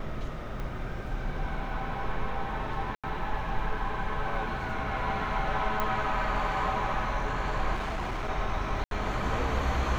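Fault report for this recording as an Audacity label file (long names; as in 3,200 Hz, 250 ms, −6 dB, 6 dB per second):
0.600000	0.600000	click −25 dBFS
2.950000	3.040000	drop-out 86 ms
5.800000	5.800000	click −15 dBFS
7.740000	8.300000	clipping −29 dBFS
8.840000	8.910000	drop-out 72 ms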